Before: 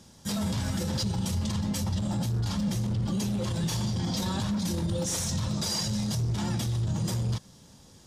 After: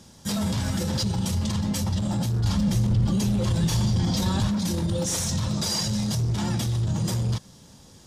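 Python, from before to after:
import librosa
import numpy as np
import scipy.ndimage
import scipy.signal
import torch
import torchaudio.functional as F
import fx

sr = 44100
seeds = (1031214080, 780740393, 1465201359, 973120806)

y = fx.low_shelf(x, sr, hz=82.0, db=11.5, at=(2.44, 4.48))
y = y * librosa.db_to_amplitude(3.5)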